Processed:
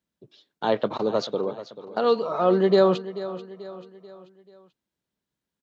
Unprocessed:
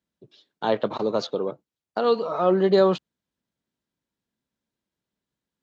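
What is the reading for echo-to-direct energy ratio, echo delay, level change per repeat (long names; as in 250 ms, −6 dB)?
−13.5 dB, 437 ms, −6.5 dB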